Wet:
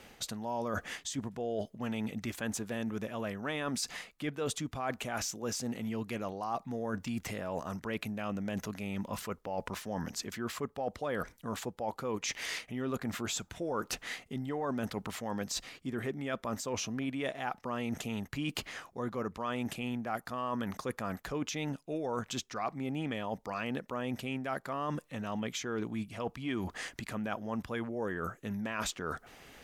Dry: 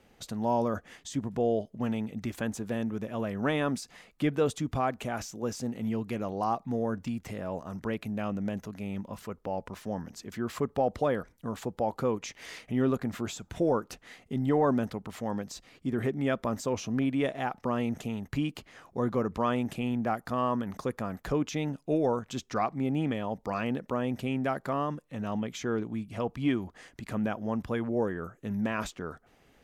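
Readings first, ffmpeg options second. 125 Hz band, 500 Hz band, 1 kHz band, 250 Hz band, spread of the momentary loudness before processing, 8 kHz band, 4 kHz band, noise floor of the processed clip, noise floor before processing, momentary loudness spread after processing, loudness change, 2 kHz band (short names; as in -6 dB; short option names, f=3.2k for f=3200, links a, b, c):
-6.0 dB, -6.5 dB, -5.0 dB, -6.0 dB, 9 LU, +5.0 dB, +3.0 dB, -63 dBFS, -64 dBFS, 3 LU, -5.0 dB, 0.0 dB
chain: -af "tiltshelf=f=870:g=-4,areverse,acompressor=threshold=-42dB:ratio=6,areverse,volume=8.5dB"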